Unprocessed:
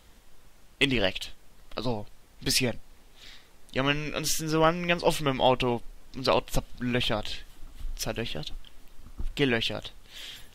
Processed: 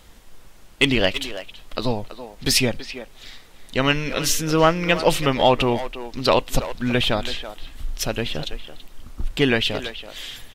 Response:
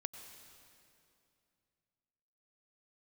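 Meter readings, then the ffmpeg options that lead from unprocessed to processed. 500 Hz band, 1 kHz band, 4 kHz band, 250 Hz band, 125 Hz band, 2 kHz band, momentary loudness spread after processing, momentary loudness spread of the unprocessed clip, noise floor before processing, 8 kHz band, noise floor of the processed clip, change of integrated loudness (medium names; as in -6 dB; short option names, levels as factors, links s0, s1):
+6.5 dB, +6.5 dB, +6.5 dB, +7.0 dB, +6.5 dB, +6.5 dB, 17 LU, 17 LU, -55 dBFS, +7.0 dB, -47 dBFS, +6.5 dB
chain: -filter_complex "[0:a]asplit=2[s0][s1];[s1]adelay=330,highpass=300,lowpass=3400,asoftclip=type=hard:threshold=0.1,volume=0.282[s2];[s0][s2]amix=inputs=2:normalize=0,acontrast=79"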